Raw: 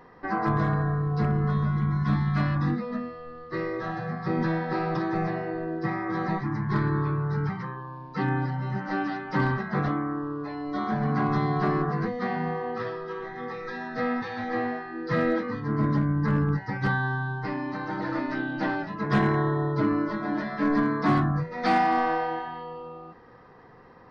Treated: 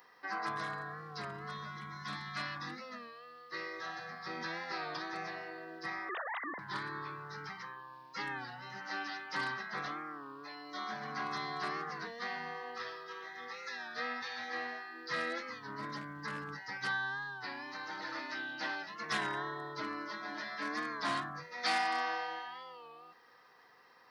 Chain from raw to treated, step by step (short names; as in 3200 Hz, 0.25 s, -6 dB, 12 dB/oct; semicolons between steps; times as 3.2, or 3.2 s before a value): 6.09–6.6 sine-wave speech; differentiator; record warp 33 1/3 rpm, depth 100 cents; gain +7.5 dB